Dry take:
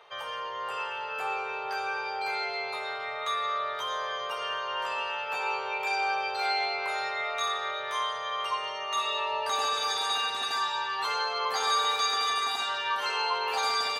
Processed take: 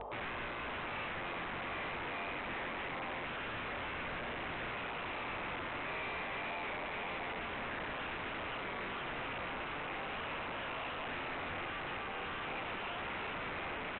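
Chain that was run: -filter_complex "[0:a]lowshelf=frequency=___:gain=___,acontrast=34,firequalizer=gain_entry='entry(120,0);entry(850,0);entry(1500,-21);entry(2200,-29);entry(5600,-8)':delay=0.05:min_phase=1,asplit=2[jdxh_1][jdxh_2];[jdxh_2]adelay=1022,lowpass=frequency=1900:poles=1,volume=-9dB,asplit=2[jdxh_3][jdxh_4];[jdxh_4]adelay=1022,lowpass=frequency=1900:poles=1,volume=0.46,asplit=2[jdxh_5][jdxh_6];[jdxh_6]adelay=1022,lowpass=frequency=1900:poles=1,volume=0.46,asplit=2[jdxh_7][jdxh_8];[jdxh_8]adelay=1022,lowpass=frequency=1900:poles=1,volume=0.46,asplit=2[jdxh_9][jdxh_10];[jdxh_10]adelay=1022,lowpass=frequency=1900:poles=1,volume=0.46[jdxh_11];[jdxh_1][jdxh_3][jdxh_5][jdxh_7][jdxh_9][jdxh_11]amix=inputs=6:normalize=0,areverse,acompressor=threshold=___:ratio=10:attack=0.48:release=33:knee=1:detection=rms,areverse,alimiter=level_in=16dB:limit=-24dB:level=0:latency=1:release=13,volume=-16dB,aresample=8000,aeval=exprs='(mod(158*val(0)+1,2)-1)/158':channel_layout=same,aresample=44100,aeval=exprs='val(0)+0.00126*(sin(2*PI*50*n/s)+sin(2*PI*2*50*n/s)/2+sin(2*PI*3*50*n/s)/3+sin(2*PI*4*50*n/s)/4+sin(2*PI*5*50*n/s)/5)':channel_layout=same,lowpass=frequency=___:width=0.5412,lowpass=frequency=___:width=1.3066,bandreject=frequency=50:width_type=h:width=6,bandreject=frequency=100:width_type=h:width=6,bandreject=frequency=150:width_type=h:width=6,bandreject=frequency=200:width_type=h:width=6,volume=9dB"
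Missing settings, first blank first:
85, 2.5, -41dB, 2700, 2700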